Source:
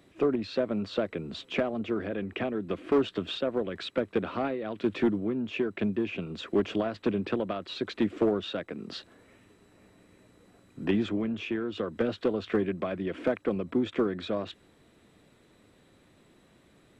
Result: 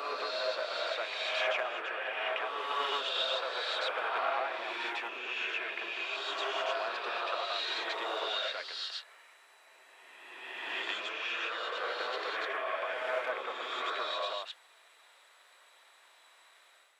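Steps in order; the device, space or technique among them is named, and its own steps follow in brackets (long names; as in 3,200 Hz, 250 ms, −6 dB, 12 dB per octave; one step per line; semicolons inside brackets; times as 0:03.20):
ghost voice (reversed playback; convolution reverb RT60 2.1 s, pre-delay 80 ms, DRR −5.5 dB; reversed playback; high-pass filter 770 Hz 24 dB per octave)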